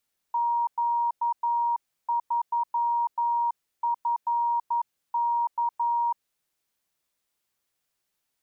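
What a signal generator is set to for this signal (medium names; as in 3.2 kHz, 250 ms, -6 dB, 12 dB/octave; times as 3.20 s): Morse "Q3FK" 11 wpm 944 Hz -22 dBFS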